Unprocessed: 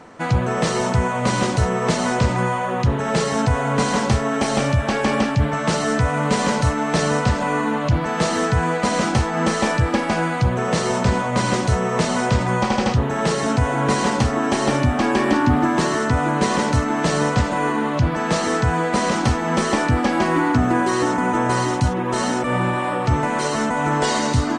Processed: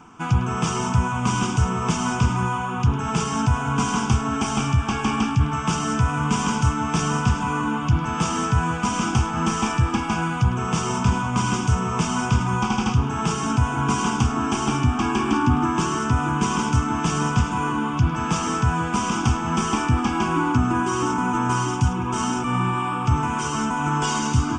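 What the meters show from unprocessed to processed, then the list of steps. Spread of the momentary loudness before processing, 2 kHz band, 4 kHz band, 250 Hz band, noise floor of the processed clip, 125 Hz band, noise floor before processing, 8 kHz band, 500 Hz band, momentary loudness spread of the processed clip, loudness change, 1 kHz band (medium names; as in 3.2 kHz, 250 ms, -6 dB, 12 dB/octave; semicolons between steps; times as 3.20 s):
2 LU, -4.5 dB, -3.0 dB, -2.0 dB, -27 dBFS, -0.5 dB, -24 dBFS, -1.0 dB, -10.0 dB, 2 LU, -2.5 dB, -2.0 dB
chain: static phaser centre 2.8 kHz, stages 8; two-band feedback delay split 590 Hz, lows 175 ms, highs 104 ms, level -15.5 dB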